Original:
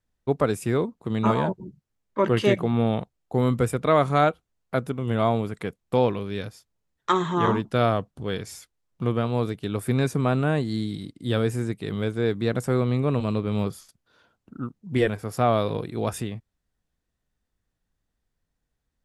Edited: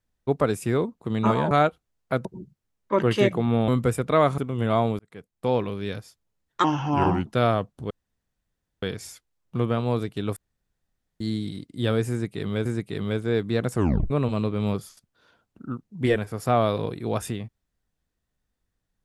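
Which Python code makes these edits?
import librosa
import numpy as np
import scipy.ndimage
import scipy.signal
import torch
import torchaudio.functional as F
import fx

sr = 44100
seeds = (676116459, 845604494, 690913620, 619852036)

y = fx.edit(x, sr, fx.cut(start_s=2.94, length_s=0.49),
    fx.move(start_s=4.13, length_s=0.74, to_s=1.51),
    fx.fade_in_span(start_s=5.48, length_s=0.71),
    fx.speed_span(start_s=7.13, length_s=0.51, speed=0.83),
    fx.insert_room_tone(at_s=8.29, length_s=0.92),
    fx.room_tone_fill(start_s=9.83, length_s=0.84),
    fx.repeat(start_s=11.57, length_s=0.55, count=2),
    fx.tape_stop(start_s=12.66, length_s=0.36), tone=tone)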